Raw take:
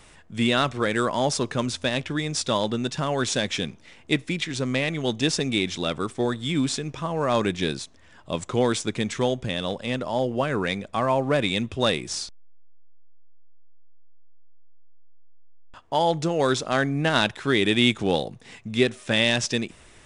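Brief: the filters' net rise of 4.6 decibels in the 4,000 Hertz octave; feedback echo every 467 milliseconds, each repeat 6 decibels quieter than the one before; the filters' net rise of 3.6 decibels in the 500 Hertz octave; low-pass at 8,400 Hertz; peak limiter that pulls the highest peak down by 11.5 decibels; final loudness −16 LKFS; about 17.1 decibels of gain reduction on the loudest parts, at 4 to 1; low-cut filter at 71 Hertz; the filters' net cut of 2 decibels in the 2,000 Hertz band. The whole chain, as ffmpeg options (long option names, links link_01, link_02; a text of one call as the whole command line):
ffmpeg -i in.wav -af "highpass=71,lowpass=8400,equalizer=frequency=500:width_type=o:gain=4.5,equalizer=frequency=2000:width_type=o:gain=-5,equalizer=frequency=4000:width_type=o:gain=7,acompressor=threshold=-34dB:ratio=4,alimiter=level_in=6.5dB:limit=-24dB:level=0:latency=1,volume=-6.5dB,aecho=1:1:467|934|1401|1868|2335|2802:0.501|0.251|0.125|0.0626|0.0313|0.0157,volume=24dB" out.wav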